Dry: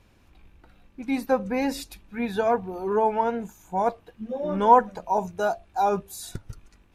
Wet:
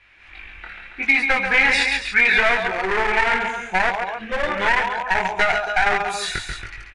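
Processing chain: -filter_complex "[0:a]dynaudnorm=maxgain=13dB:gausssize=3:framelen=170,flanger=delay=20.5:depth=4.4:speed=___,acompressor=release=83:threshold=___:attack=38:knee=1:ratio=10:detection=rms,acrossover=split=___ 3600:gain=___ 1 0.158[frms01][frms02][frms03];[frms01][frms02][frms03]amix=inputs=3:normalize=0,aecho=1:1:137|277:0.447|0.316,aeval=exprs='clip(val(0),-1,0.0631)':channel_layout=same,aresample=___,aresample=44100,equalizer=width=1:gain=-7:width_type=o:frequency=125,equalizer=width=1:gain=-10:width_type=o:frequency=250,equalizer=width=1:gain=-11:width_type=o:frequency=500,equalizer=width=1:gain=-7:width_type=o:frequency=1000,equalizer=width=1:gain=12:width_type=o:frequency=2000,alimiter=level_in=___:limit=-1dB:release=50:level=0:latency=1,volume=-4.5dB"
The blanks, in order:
0.75, -20dB, 340, 0.224, 22050, 16dB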